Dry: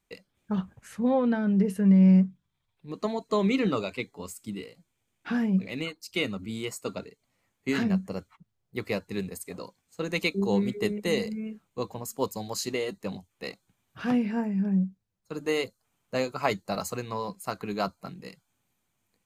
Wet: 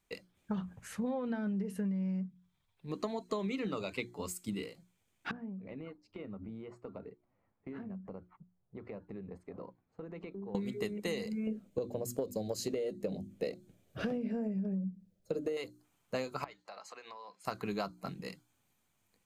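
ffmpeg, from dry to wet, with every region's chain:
-filter_complex "[0:a]asettb=1/sr,asplit=3[s0][s1][s2];[s0]atrim=end=5.314[s3];[s1]atrim=start=5.31:end=10.55,asetpts=PTS-STARTPTS,afade=t=in:d=0.004:c=qsin,afade=t=out:st=5.236:d=0.004:c=qsin,lowpass=1100,acompressor=threshold=0.01:ratio=10:attack=3.2:release=140:knee=1:detection=peak[s4];[s2]atrim=start=10.546[s5];[s3][s4]acrossfade=d=0.004:c1=hsin:c2=qsin[s6];[s6][s5]acrossfade=d=0.004:c1=qsin:c2=hsin,asettb=1/sr,asplit=3[s7][s8][s9];[s7]atrim=end=11.474[s10];[s8]atrim=start=11.47:end=15.57,asetpts=PTS-STARTPTS,afade=t=in:d=0.004:c=qsin,afade=t=out:st=4.096:d=0.004:c=qsin,lowshelf=f=730:t=q:w=3:g=8,bandreject=f=50:t=h:w=6,bandreject=f=100:t=h:w=6,bandreject=f=150:t=h:w=6,bandreject=f=200:t=h:w=6,bandreject=f=250:t=h:w=6,bandreject=f=300:t=h:w=6,acompressor=threshold=0.126:ratio=5:attack=3.2:release=140:knee=1:detection=peak[s11];[s9]atrim=start=15.566[s12];[s10][s11]acrossfade=d=0.004:c1=hsin:c2=qsin[s13];[s13][s12]acrossfade=d=0.004:c1=qsin:c2=hsin,asettb=1/sr,asplit=3[s14][s15][s16];[s14]atrim=end=16.444[s17];[s15]atrim=start=16.44:end=17.45,asetpts=PTS-STARTPTS,afade=t=in:d=0.004:c=qsin,afade=t=out:st=1.006:d=0.004:c=qsin,highpass=670,lowpass=4100,acompressor=threshold=0.00501:ratio=6:attack=3.2:release=140:knee=1:detection=peak[s18];[s16]atrim=start=17.446[s19];[s17][s18]acrossfade=d=0.004:c1=hsin:c2=qsin[s20];[s20][s19]acrossfade=d=0.004:c1=qsin:c2=hsin,bandreject=f=60:t=h:w=6,bandreject=f=120:t=h:w=6,bandreject=f=180:t=h:w=6,bandreject=f=240:t=h:w=6,bandreject=f=300:t=h:w=6,bandreject=f=360:t=h:w=6,acompressor=threshold=0.0251:ratio=16"

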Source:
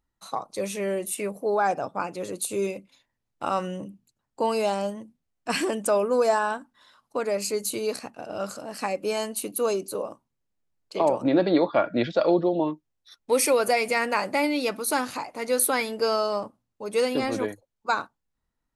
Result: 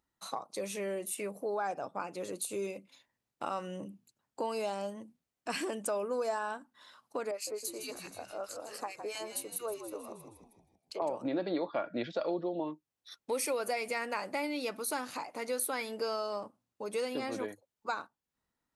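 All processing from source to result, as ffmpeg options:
-filter_complex "[0:a]asettb=1/sr,asplit=3[s0][s1][s2];[s0]atrim=end=7.314[s3];[s1]atrim=start=7.31:end=11.02,asetpts=PTS-STARTPTS,afade=t=in:d=0.004:c=qsin,afade=t=out:st=3.706:d=0.004:c=qsin,highpass=430,acrossover=split=1400[s4][s5];[s4]aeval=exprs='val(0)*(1-1/2+1/2*cos(2*PI*4.6*n/s))':c=same[s6];[s5]aeval=exprs='val(0)*(1-1/2-1/2*cos(2*PI*4.6*n/s))':c=same[s7];[s6][s7]amix=inputs=2:normalize=0,asplit=7[s8][s9][s10][s11][s12][s13][s14];[s9]adelay=158,afreqshift=-81,volume=0.282[s15];[s10]adelay=316,afreqshift=-162,volume=0.155[s16];[s11]adelay=474,afreqshift=-243,volume=0.0851[s17];[s12]adelay=632,afreqshift=-324,volume=0.0468[s18];[s13]adelay=790,afreqshift=-405,volume=0.0257[s19];[s14]adelay=948,afreqshift=-486,volume=0.0141[s20];[s8][s15][s16][s17][s18][s19][s20]amix=inputs=7:normalize=0,atrim=end_sample=163611[s21];[s2]atrim=start=11.016[s22];[s3][s21]acrossfade=d=0.004:c1=hsin:c2=qsin[s23];[s23][s22]acrossfade=d=0.004:c1=qsin:c2=hsin,highpass=f=180:p=1,acompressor=threshold=0.01:ratio=2"

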